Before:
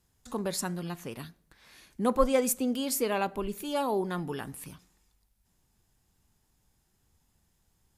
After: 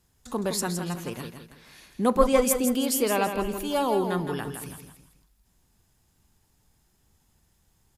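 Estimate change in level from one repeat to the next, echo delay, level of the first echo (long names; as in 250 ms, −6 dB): −8.5 dB, 164 ms, −7.5 dB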